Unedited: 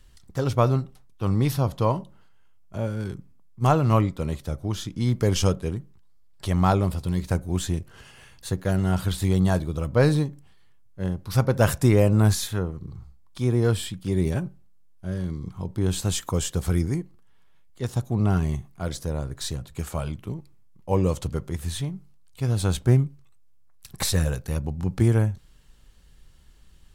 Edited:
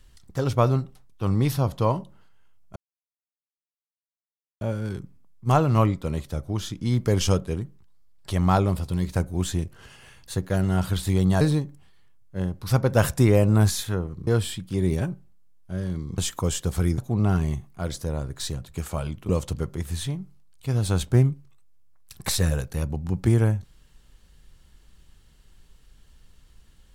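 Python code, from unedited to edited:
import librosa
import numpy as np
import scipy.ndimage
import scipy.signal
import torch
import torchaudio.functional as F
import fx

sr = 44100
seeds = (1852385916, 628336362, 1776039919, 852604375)

y = fx.edit(x, sr, fx.insert_silence(at_s=2.76, length_s=1.85),
    fx.cut(start_s=9.56, length_s=0.49),
    fx.cut(start_s=12.91, length_s=0.7),
    fx.cut(start_s=15.52, length_s=0.56),
    fx.cut(start_s=16.88, length_s=1.11),
    fx.cut(start_s=20.3, length_s=0.73), tone=tone)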